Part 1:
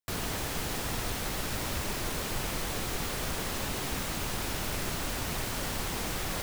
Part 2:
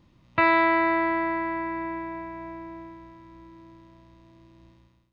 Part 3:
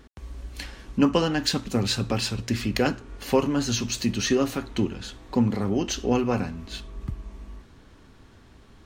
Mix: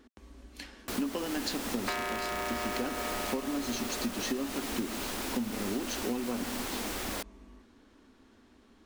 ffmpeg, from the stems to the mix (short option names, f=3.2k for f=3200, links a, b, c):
-filter_complex "[0:a]adelay=800,volume=-1.5dB[a];[1:a]aeval=exprs='val(0)*sgn(sin(2*PI*270*n/s))':c=same,adelay=1500,volume=-5dB[b];[2:a]volume=-7.5dB[c];[a][b][c]amix=inputs=3:normalize=0,lowshelf=f=190:t=q:w=3:g=-7,acompressor=threshold=-29dB:ratio=10"